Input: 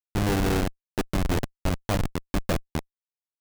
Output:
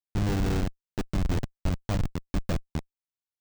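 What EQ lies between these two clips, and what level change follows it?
tone controls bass +7 dB, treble +3 dB; bell 12000 Hz -13 dB 0.57 oct; -7.0 dB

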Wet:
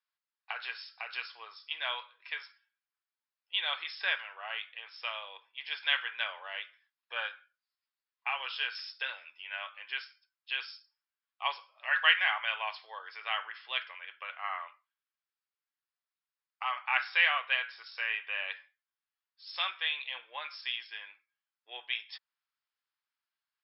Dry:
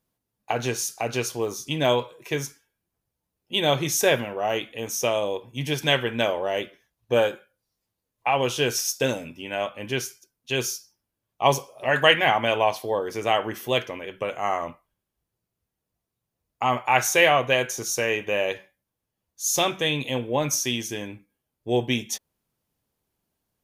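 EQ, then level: ladder high-pass 1100 Hz, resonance 35%; brick-wall FIR low-pass 5400 Hz; 0.0 dB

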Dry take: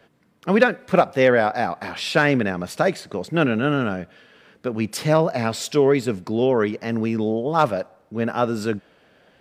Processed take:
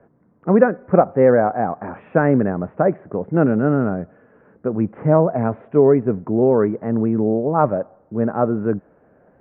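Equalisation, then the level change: Gaussian blur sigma 6.8 samples; +4.5 dB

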